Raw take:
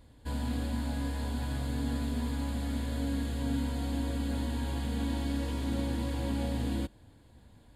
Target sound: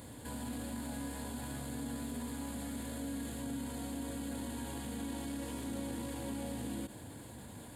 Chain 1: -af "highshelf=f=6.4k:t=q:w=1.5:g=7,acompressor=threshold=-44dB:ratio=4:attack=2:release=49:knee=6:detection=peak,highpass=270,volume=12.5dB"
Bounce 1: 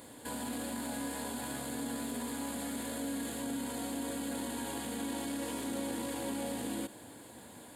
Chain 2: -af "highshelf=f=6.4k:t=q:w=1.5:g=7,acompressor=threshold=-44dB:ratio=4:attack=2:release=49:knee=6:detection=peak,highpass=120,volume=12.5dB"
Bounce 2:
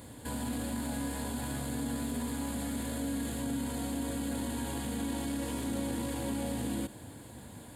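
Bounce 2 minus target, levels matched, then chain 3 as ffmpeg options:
compressor: peak gain reduction -5.5 dB
-af "highshelf=f=6.4k:t=q:w=1.5:g=7,acompressor=threshold=-51.5dB:ratio=4:attack=2:release=49:knee=6:detection=peak,highpass=120,volume=12.5dB"

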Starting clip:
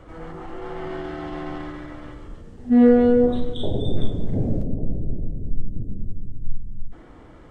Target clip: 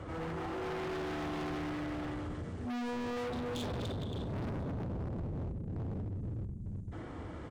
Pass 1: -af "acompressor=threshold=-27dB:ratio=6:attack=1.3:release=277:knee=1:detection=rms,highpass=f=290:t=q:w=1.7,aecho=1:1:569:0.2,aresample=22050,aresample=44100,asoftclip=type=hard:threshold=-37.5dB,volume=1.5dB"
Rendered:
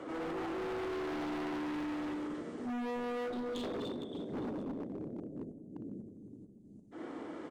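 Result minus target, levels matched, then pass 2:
125 Hz band -12.5 dB; compressor: peak gain reduction +6.5 dB
-af "acompressor=threshold=-19dB:ratio=6:attack=1.3:release=277:knee=1:detection=rms,highpass=f=81:t=q:w=1.7,aecho=1:1:569:0.2,aresample=22050,aresample=44100,asoftclip=type=hard:threshold=-37.5dB,volume=1.5dB"

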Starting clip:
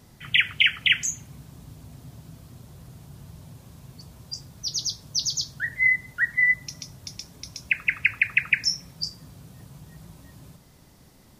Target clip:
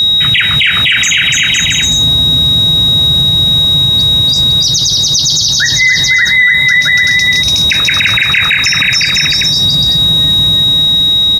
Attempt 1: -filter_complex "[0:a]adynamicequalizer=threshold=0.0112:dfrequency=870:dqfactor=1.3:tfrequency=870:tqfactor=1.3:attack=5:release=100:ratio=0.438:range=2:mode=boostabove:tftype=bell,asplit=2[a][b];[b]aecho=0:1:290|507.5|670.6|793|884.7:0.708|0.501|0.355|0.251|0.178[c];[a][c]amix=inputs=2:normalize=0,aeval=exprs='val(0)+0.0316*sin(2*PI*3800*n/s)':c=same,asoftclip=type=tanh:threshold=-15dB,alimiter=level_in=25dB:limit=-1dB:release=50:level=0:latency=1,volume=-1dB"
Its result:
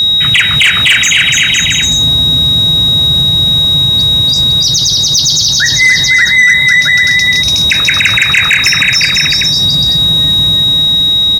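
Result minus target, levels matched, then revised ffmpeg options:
soft clip: distortion +16 dB
-filter_complex "[0:a]adynamicequalizer=threshold=0.0112:dfrequency=870:dqfactor=1.3:tfrequency=870:tqfactor=1.3:attack=5:release=100:ratio=0.438:range=2:mode=boostabove:tftype=bell,asplit=2[a][b];[b]aecho=0:1:290|507.5|670.6|793|884.7:0.708|0.501|0.355|0.251|0.178[c];[a][c]amix=inputs=2:normalize=0,aeval=exprs='val(0)+0.0316*sin(2*PI*3800*n/s)':c=same,asoftclip=type=tanh:threshold=-4dB,alimiter=level_in=25dB:limit=-1dB:release=50:level=0:latency=1,volume=-1dB"

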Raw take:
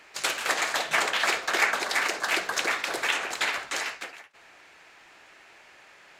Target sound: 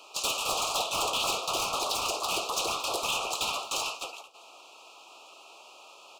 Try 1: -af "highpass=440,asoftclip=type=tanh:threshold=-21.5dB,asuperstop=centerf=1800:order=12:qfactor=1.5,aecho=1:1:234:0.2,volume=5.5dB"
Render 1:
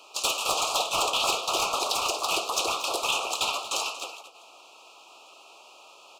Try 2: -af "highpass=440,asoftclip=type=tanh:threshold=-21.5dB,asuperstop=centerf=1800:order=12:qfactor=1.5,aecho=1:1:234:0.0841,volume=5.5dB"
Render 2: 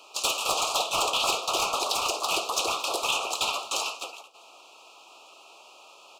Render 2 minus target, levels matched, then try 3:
soft clip: distortion -5 dB
-af "highpass=440,asoftclip=type=tanh:threshold=-28.5dB,asuperstop=centerf=1800:order=12:qfactor=1.5,aecho=1:1:234:0.0841,volume=5.5dB"

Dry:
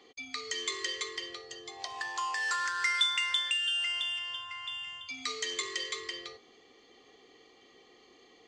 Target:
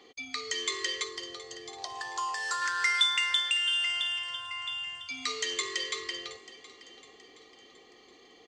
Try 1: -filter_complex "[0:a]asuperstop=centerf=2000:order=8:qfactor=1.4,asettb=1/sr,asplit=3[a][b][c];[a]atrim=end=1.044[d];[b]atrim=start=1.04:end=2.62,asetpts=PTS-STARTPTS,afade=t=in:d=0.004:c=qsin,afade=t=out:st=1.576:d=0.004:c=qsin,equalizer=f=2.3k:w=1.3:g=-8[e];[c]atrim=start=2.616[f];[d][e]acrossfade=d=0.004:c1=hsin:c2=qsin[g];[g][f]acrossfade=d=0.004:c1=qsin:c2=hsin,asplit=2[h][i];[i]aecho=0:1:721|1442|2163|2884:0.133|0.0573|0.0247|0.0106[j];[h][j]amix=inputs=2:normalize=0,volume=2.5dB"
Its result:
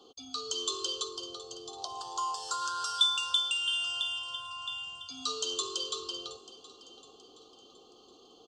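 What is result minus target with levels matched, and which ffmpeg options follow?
2000 Hz band -6.5 dB
-filter_complex "[0:a]asettb=1/sr,asplit=3[a][b][c];[a]atrim=end=1.044[d];[b]atrim=start=1.04:end=2.62,asetpts=PTS-STARTPTS,afade=t=in:d=0.004:c=qsin,afade=t=out:st=1.576:d=0.004:c=qsin,equalizer=f=2.3k:w=1.3:g=-8[e];[c]atrim=start=2.616[f];[d][e]acrossfade=d=0.004:c1=hsin:c2=qsin[g];[g][f]acrossfade=d=0.004:c1=qsin:c2=hsin,asplit=2[h][i];[i]aecho=0:1:721|1442|2163|2884:0.133|0.0573|0.0247|0.0106[j];[h][j]amix=inputs=2:normalize=0,volume=2.5dB"

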